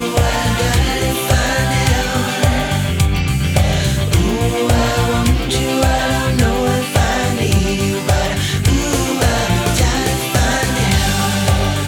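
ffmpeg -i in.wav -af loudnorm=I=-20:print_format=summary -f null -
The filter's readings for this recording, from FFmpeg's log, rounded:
Input Integrated:    -15.6 LUFS
Input True Peak:      -3.1 dBTP
Input LRA:             0.4 LU
Input Threshold:     -25.6 LUFS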